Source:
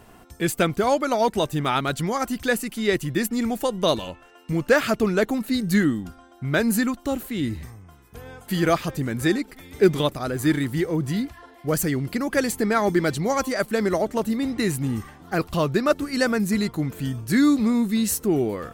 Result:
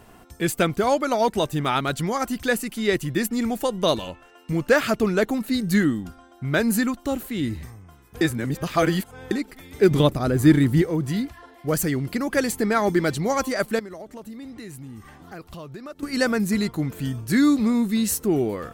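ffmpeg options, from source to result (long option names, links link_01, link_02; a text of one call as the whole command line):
ffmpeg -i in.wav -filter_complex "[0:a]asettb=1/sr,asplit=3[link_01][link_02][link_03];[link_01]atrim=end=9.914[link_04];[link_02]atrim=start=9.91:end=10.82,asetpts=PTS-STARTPTS,afade=type=in:duration=0.004:curve=qsin,afade=type=out:start_time=0.906:duration=0.004:curve=qsin,lowshelf=frequency=470:gain=8.5[link_05];[link_03]atrim=start=10.816[link_06];[link_04][link_05]acrossfade=duration=0.004:curve1=hsin:curve2=qsin[link_07];[link_07][link_06]acrossfade=duration=0.004:curve1=qsin:curve2=hsin,asettb=1/sr,asplit=3[link_08][link_09][link_10];[link_08]atrim=end=13.794[link_11];[link_09]atrim=start=13.79:end=16.03,asetpts=PTS-STARTPTS,afade=type=in:duration=0.004:curve=qsin,afade=type=out:start_time=2.236:duration=0.004:curve=qsin,acompressor=threshold=-40dB:ratio=3:attack=3.2:release=140:knee=1:detection=peak[link_12];[link_10]atrim=start=16.026[link_13];[link_11][link_12]acrossfade=duration=0.004:curve1=hsin:curve2=qsin[link_14];[link_14][link_13]acrossfade=duration=0.004:curve1=qsin:curve2=hsin,asplit=3[link_15][link_16][link_17];[link_15]atrim=end=8.212[link_18];[link_16]atrim=start=8.208:end=9.312,asetpts=PTS-STARTPTS,areverse[link_19];[link_17]atrim=start=9.308[link_20];[link_18][link_19]acrossfade=duration=0.004:curve1=hsin:curve2=hsin[link_21];[link_21][link_20]acrossfade=duration=0.004:curve1=hsin:curve2=hsin" out.wav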